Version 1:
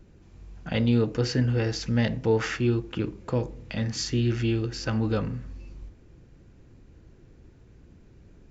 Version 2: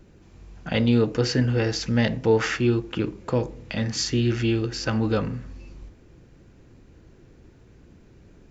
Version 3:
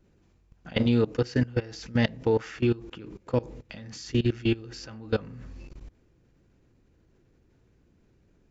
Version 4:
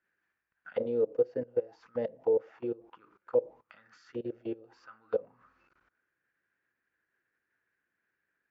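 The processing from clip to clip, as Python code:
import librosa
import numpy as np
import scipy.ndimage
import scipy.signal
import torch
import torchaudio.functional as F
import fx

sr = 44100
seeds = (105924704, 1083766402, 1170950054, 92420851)

y1 = fx.low_shelf(x, sr, hz=150.0, db=-5.5)
y1 = F.gain(torch.from_numpy(y1), 4.5).numpy()
y2 = fx.level_steps(y1, sr, step_db=21)
y3 = fx.auto_wah(y2, sr, base_hz=510.0, top_hz=1700.0, q=6.8, full_db=-23.0, direction='down')
y3 = F.gain(torch.from_numpy(y3), 5.0).numpy()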